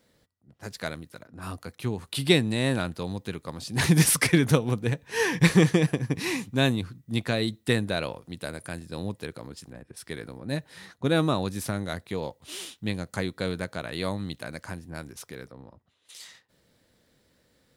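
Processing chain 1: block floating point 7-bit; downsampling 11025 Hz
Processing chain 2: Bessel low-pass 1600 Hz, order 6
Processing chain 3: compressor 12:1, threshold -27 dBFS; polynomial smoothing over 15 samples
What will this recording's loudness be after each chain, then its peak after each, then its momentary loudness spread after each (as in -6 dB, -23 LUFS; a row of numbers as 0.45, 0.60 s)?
-27.5, -28.5, -35.0 LUFS; -4.0, -7.0, -15.0 dBFS; 19, 19, 12 LU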